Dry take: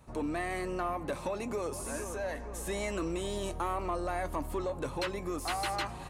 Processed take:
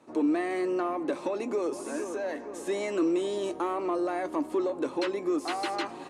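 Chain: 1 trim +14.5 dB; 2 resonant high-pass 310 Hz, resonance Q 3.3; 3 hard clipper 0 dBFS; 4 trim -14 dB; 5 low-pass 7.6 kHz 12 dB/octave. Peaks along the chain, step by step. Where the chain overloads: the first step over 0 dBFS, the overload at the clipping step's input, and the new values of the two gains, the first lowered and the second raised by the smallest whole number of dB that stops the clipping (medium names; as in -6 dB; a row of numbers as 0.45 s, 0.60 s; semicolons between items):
-8.5 dBFS, -3.5 dBFS, -3.5 dBFS, -17.5 dBFS, -17.5 dBFS; nothing clips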